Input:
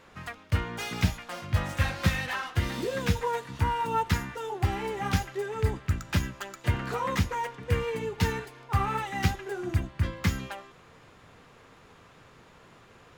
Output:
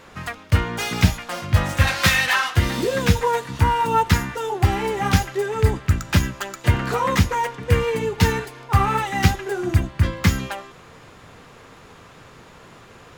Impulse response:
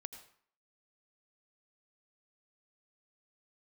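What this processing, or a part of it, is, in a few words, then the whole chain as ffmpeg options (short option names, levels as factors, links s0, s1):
exciter from parts: -filter_complex "[0:a]asettb=1/sr,asplit=3[s0][s1][s2];[s0]atrim=end=1.874[s3];[s1]atrim=start=1.87:end=2.56,asetpts=PTS-STARTPTS,afade=t=in:d=0.004:c=qsin,afade=t=out:st=0.686:d=0.004:c=qsin,tiltshelf=f=650:g=-6.5[s4];[s2]atrim=start=2.556[s5];[s3][s4]acrossfade=d=0.004:c1=hsin:c2=qsin[s6];[s6][s5]acrossfade=d=0.004:c1=qsin:c2=hsin,asplit=2[s7][s8];[s8]highpass=3600,asoftclip=type=tanh:threshold=0.0112,volume=0.282[s9];[s7][s9]amix=inputs=2:normalize=0,volume=2.82"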